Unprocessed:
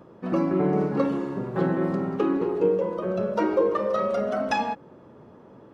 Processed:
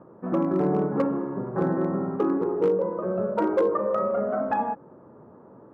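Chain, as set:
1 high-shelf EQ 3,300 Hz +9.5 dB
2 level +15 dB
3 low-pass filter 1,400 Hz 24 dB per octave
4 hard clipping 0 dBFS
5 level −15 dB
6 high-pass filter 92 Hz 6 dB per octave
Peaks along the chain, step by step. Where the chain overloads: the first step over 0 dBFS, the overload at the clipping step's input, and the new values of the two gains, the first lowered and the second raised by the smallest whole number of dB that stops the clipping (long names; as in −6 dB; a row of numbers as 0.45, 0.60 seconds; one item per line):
−10.0, +5.0, +5.0, 0.0, −15.0, −13.5 dBFS
step 2, 5.0 dB
step 2 +10 dB, step 5 −10 dB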